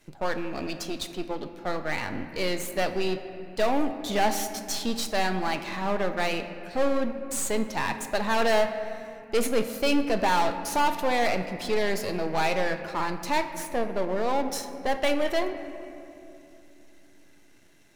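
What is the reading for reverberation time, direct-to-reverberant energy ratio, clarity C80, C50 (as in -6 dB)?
2.7 s, 8.0 dB, 10.5 dB, 9.5 dB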